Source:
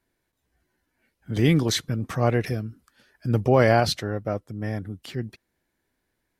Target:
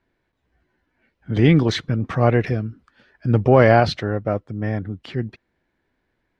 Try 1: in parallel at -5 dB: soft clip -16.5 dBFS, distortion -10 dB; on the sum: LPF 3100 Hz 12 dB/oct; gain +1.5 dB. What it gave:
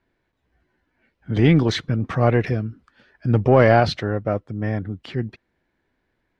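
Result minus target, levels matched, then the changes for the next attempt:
soft clip: distortion +11 dB
change: soft clip -7.5 dBFS, distortion -21 dB

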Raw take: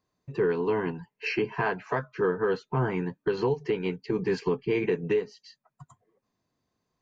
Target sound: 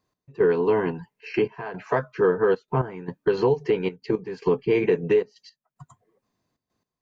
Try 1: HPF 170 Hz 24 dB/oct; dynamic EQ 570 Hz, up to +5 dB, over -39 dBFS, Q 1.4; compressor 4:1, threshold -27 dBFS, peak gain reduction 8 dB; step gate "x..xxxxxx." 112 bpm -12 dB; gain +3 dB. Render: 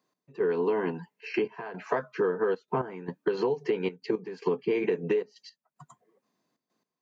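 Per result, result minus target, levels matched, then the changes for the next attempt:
compressor: peak gain reduction +8 dB; 125 Hz band -4.0 dB
remove: compressor 4:1, threshold -27 dBFS, peak gain reduction 8 dB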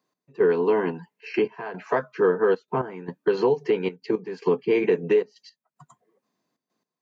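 125 Hz band -6.0 dB
remove: HPF 170 Hz 24 dB/oct

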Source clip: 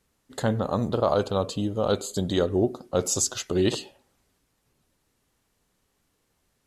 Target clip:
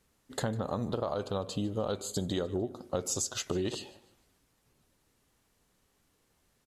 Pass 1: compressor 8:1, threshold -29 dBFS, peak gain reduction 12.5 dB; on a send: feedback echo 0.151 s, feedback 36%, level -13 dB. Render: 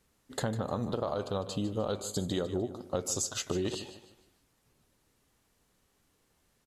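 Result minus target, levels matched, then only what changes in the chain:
echo-to-direct +7.5 dB
change: feedback echo 0.151 s, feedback 36%, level -20.5 dB

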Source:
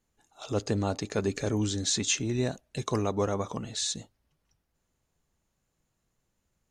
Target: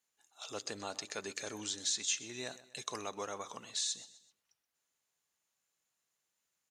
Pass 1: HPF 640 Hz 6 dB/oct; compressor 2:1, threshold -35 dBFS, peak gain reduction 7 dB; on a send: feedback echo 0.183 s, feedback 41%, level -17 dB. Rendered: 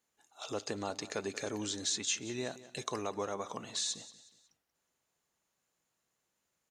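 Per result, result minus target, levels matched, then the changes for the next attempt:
echo 56 ms late; 500 Hz band +4.5 dB
change: feedback echo 0.127 s, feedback 41%, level -17 dB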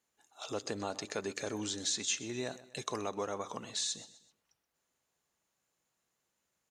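500 Hz band +4.5 dB
change: HPF 2100 Hz 6 dB/oct

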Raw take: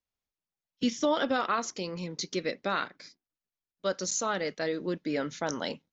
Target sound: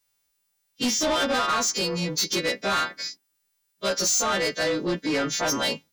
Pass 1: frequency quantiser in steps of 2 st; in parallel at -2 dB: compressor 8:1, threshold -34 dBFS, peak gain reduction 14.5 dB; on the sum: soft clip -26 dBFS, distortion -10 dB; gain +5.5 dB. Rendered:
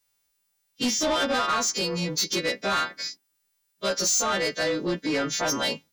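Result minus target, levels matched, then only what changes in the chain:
compressor: peak gain reduction +8 dB
change: compressor 8:1, threshold -25 dBFS, peak gain reduction 6.5 dB

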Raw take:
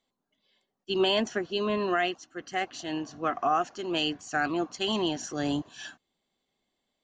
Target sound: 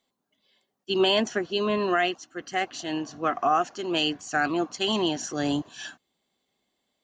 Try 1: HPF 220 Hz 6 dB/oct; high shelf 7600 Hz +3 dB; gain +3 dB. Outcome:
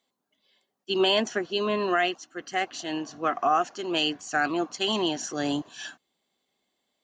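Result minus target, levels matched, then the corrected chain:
125 Hz band -3.0 dB
HPF 74 Hz 6 dB/oct; high shelf 7600 Hz +3 dB; gain +3 dB

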